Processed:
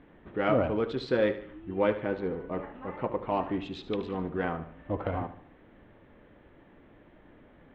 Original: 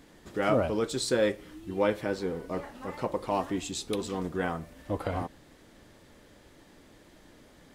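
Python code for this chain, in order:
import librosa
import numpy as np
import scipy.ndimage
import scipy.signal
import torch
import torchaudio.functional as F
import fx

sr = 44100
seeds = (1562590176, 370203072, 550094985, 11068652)

y = fx.wiener(x, sr, points=9)
y = scipy.signal.sosfilt(scipy.signal.butter(4, 3400.0, 'lowpass', fs=sr, output='sos'), y)
y = fx.echo_feedback(y, sr, ms=74, feedback_pct=42, wet_db=-13)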